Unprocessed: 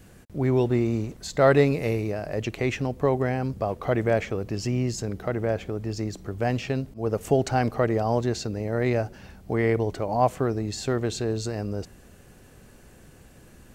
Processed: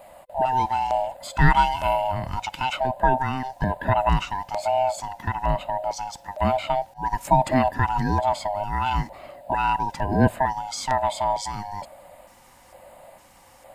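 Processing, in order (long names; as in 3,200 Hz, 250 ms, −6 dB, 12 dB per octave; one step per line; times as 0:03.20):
neighbouring bands swapped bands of 500 Hz
auto-filter notch square 1.1 Hz 620–5,800 Hz
level +3.5 dB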